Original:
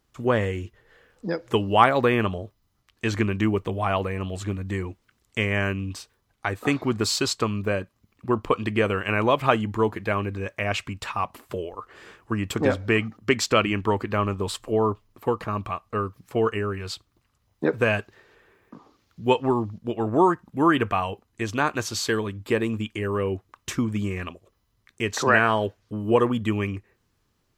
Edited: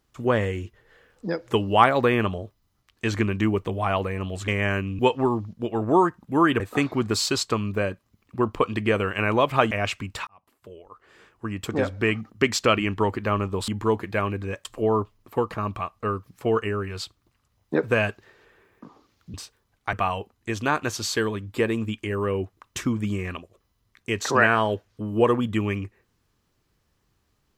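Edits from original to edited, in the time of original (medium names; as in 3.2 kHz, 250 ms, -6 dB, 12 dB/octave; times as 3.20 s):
4.48–5.40 s: delete
5.91–6.50 s: swap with 19.24–20.85 s
9.61–10.58 s: move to 14.55 s
11.14–13.21 s: fade in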